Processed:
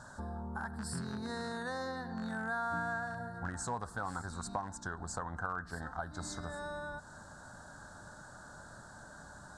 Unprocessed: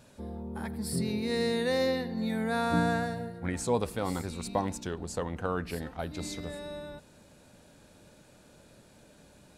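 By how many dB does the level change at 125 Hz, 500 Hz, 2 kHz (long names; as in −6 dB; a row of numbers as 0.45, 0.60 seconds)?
−7.5, −12.0, −1.0 decibels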